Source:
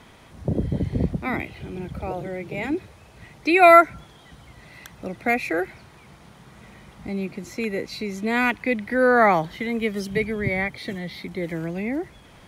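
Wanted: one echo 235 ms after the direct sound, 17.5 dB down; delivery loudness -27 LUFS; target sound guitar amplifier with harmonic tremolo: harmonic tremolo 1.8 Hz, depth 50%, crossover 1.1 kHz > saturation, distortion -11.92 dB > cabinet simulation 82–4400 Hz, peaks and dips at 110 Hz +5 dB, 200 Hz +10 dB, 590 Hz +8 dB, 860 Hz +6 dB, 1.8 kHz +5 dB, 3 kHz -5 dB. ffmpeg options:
-filter_complex "[0:a]aecho=1:1:235:0.133,acrossover=split=1100[s0][s1];[s0]aeval=exprs='val(0)*(1-0.5/2+0.5/2*cos(2*PI*1.8*n/s))':c=same[s2];[s1]aeval=exprs='val(0)*(1-0.5/2-0.5/2*cos(2*PI*1.8*n/s))':c=same[s3];[s2][s3]amix=inputs=2:normalize=0,asoftclip=threshold=0.2,highpass=82,equalizer=f=110:t=q:w=4:g=5,equalizer=f=200:t=q:w=4:g=10,equalizer=f=590:t=q:w=4:g=8,equalizer=f=860:t=q:w=4:g=6,equalizer=f=1800:t=q:w=4:g=5,equalizer=f=3000:t=q:w=4:g=-5,lowpass=f=4400:w=0.5412,lowpass=f=4400:w=1.3066,volume=0.668"

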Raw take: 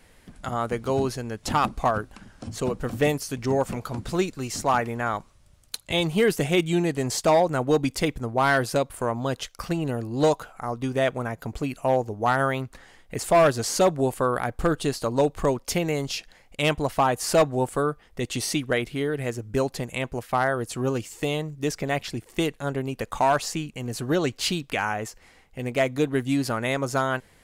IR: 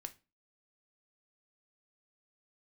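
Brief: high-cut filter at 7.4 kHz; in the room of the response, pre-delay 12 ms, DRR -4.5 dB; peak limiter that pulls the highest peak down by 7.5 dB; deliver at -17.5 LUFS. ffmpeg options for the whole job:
-filter_complex "[0:a]lowpass=7400,alimiter=limit=0.119:level=0:latency=1,asplit=2[s0][s1];[1:a]atrim=start_sample=2205,adelay=12[s2];[s1][s2]afir=irnorm=-1:irlink=0,volume=2.66[s3];[s0][s3]amix=inputs=2:normalize=0,volume=2.11"

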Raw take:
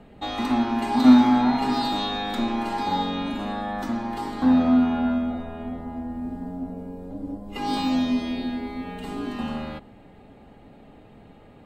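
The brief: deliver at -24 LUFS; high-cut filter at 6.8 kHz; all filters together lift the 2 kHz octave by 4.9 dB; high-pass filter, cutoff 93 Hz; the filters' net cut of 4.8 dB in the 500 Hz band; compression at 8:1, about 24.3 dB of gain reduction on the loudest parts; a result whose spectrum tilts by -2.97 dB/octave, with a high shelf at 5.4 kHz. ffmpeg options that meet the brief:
-af "highpass=93,lowpass=6800,equalizer=f=500:t=o:g=-7.5,equalizer=f=2000:t=o:g=5.5,highshelf=f=5400:g=8,acompressor=threshold=0.0158:ratio=8,volume=5.62"

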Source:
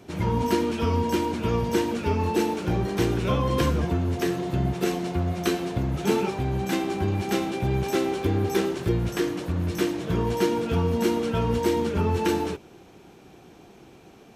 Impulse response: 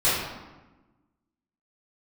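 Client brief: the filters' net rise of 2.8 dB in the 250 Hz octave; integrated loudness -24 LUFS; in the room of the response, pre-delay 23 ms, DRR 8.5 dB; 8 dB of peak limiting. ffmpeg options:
-filter_complex "[0:a]equalizer=f=250:t=o:g=4,alimiter=limit=0.178:level=0:latency=1,asplit=2[s0][s1];[1:a]atrim=start_sample=2205,adelay=23[s2];[s1][s2]afir=irnorm=-1:irlink=0,volume=0.0562[s3];[s0][s3]amix=inputs=2:normalize=0,volume=1.12"

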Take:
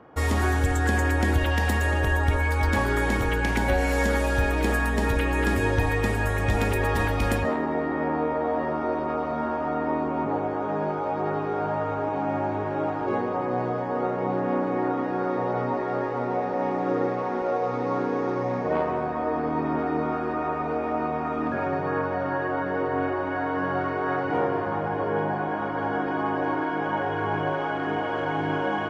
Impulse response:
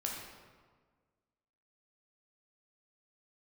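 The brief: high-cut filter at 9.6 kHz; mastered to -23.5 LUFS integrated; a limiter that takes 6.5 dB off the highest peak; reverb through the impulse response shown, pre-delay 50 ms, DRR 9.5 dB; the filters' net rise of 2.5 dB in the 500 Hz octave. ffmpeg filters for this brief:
-filter_complex "[0:a]lowpass=9600,equalizer=f=500:t=o:g=3,alimiter=limit=0.141:level=0:latency=1,asplit=2[s0][s1];[1:a]atrim=start_sample=2205,adelay=50[s2];[s1][s2]afir=irnorm=-1:irlink=0,volume=0.266[s3];[s0][s3]amix=inputs=2:normalize=0,volume=1.26"

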